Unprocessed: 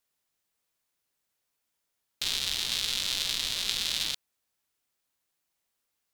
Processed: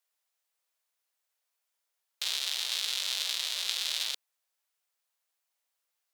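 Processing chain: HPF 490 Hz 24 dB/oct; gain -2 dB

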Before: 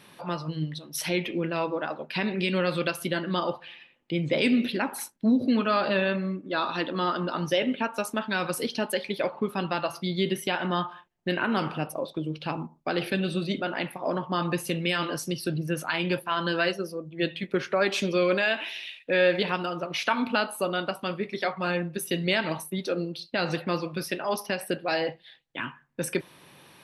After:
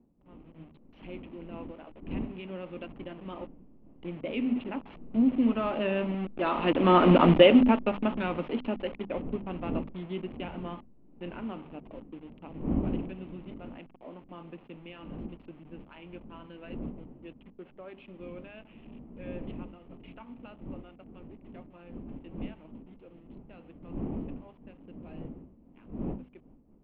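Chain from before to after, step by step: level-crossing sampler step -29.5 dBFS; Doppler pass-by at 7.19, 6 m/s, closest 1.4 m; wind noise 200 Hz -54 dBFS; elliptic low-pass 2900 Hz, stop band 70 dB; notches 50/100/150/200/250 Hz; AGC gain up to 11 dB; fifteen-band EQ 100 Hz -11 dB, 250 Hz +8 dB, 1600 Hz -9 dB; gain +1.5 dB

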